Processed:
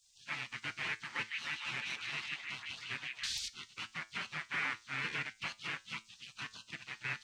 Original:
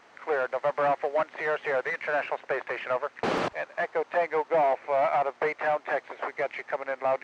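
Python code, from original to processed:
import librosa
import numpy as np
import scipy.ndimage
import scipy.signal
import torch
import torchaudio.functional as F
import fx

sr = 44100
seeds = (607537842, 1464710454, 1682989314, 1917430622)

y = fx.spec_gate(x, sr, threshold_db=-25, keep='weak')
y = fx.peak_eq(y, sr, hz=440.0, db=-11.5, octaves=2.6)
y = fx.comb_fb(y, sr, f0_hz=110.0, decay_s=0.26, harmonics='all', damping=0.0, mix_pct=50)
y = fx.echo_stepped(y, sr, ms=154, hz=2800.0, octaves=-0.7, feedback_pct=70, wet_db=0.0, at=(1.07, 3.33))
y = y * librosa.db_to_amplitude(12.5)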